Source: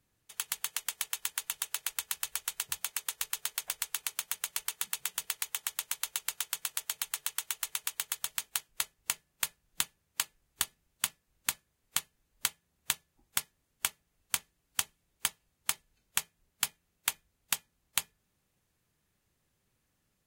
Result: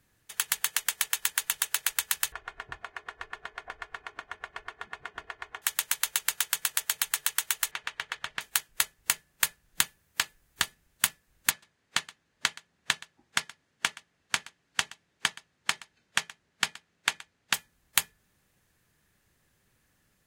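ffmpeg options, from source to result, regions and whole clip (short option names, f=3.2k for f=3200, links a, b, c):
-filter_complex "[0:a]asettb=1/sr,asplit=3[a][b][c];[a]atrim=end=2.324[d];[b]atrim=start=2.32:end=5.62,asetpts=PTS-STARTPTS,afade=t=in:d=0.004:c=qsin,afade=t=out:st=3.296:d=0.004:c=qsin,lowpass=1.2k,aecho=1:1:2.8:0.56,atrim=end_sample=145530,acompressor=mode=upward:threshold=-49dB:ratio=2.5:attack=3.2:release=140:knee=2.83:detection=peak[e];[c]atrim=start=5.616[f];[d][e]acrossfade=d=0.004:c1=hsin:c2=qsin[g];[g][f]acrossfade=d=0.004:c1=qsin:c2=hsin,asettb=1/sr,asplit=3[h][i][j];[h]atrim=end=7.714[k];[i]atrim=start=7.71:end=8.41,asetpts=PTS-STARTPTS,afade=t=in:d=0.004:c=qsin,afade=t=out:st=0.696:d=0.004:c=qsin,lowpass=2.8k,asoftclip=type=hard:threshold=-24.5dB[l];[j]atrim=start=8.406[m];[k][l]acrossfade=d=0.004:c1=hsin:c2=qsin[n];[n][m]acrossfade=d=0.004:c1=qsin:c2=hsin,asettb=1/sr,asplit=3[o][p][q];[o]atrim=end=9.814[r];[p]atrim=start=9.81:end=10.64,asetpts=PTS-STARTPTS,afade=t=in:d=0.004:c=qsin,afade=t=out:st=0.826:d=0.004:c=qsin,highshelf=f=12k:g=6.5,acrossover=split=7000[s][t];[t]acompressor=threshold=-40dB:ratio=4:attack=1:release=60[u];[s][u]amix=inputs=2:normalize=0[v];[q]atrim=start=10.636[w];[r][v]acrossfade=d=0.004:c1=hsin:c2=qsin[x];[x][w]acrossfade=d=0.004:c1=qsin:c2=hsin,asettb=1/sr,asplit=3[y][z][aa];[y]atrim=end=11.504[ab];[z]atrim=start=11.5:end=17.54,asetpts=PTS-STARTPTS,afade=t=in:d=0.004:c=qsin,afade=t=out:st=6.036:d=0.004:c=qsin,highpass=120,lowpass=5.6k,aecho=1:1:123:0.0944,atrim=end_sample=266364[ac];[aa]atrim=start=17.536[ad];[ab][ac]acrossfade=d=0.004:c1=hsin:c2=qsin[ae];[ae][ad]acrossfade=d=0.004:c1=qsin:c2=hsin,equalizer=f=1.7k:w=2.9:g=6,acontrast=64"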